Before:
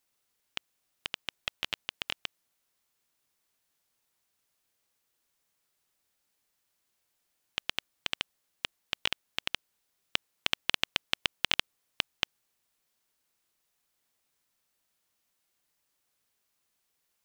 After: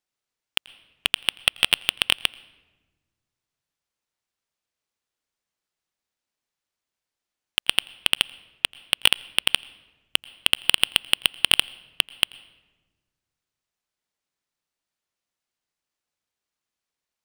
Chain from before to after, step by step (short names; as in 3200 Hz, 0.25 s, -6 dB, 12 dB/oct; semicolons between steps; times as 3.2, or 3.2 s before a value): median filter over 3 samples; sample leveller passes 5; on a send: reverb RT60 1.3 s, pre-delay 85 ms, DRR 22 dB; on the sum: gain +3.5 dB